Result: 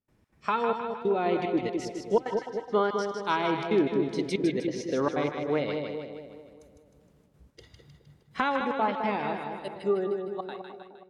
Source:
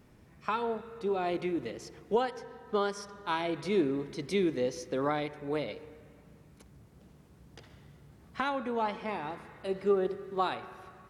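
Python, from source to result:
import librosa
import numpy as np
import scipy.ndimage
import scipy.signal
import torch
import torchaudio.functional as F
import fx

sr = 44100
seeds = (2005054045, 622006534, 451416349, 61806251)

p1 = fx.fade_out_tail(x, sr, length_s=2.02)
p2 = fx.noise_reduce_blind(p1, sr, reduce_db=12)
p3 = fx.rider(p2, sr, range_db=3, speed_s=0.5)
p4 = p2 + (p3 * librosa.db_to_amplitude(-3.0))
p5 = fx.env_lowpass_down(p4, sr, base_hz=2500.0, full_db=-21.0)
p6 = fx.step_gate(p5, sr, bpm=186, pattern='.xx.xxxxx', floor_db=-24.0, edge_ms=4.5)
y = p6 + fx.echo_split(p6, sr, split_hz=920.0, low_ms=209, high_ms=155, feedback_pct=52, wet_db=-5, dry=0)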